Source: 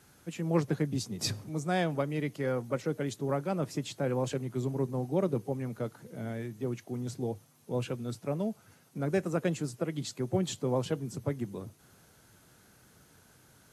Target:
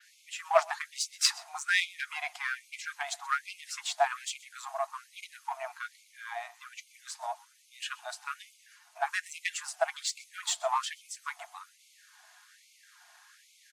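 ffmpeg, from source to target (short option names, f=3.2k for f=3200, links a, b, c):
-filter_complex "[0:a]asubboost=boost=9:cutoff=120,aecho=1:1:5.4:0.31,adynamicequalizer=threshold=0.00126:dfrequency=8600:dqfactor=1.2:tfrequency=8600:tqfactor=1.2:attack=5:release=100:ratio=0.375:range=2:mode=boostabove:tftype=bell,asplit=2[a][b];[b]adynamicsmooth=sensitivity=4.5:basefreq=560,volume=-2dB[c];[a][c]amix=inputs=2:normalize=0,afreqshift=140,adynamicsmooth=sensitivity=5.5:basefreq=7.9k,asplit=2[d][e];[e]aecho=0:1:127:0.0794[f];[d][f]amix=inputs=2:normalize=0,afftfilt=real='re*gte(b*sr/1024,610*pow(2100/610,0.5+0.5*sin(2*PI*1.2*pts/sr)))':imag='im*gte(b*sr/1024,610*pow(2100/610,0.5+0.5*sin(2*PI*1.2*pts/sr)))':win_size=1024:overlap=0.75,volume=7.5dB"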